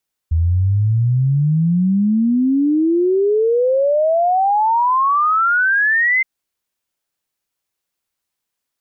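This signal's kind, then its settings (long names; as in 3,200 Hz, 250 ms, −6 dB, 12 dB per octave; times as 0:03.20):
exponential sine sweep 79 Hz → 2,100 Hz 5.92 s −12 dBFS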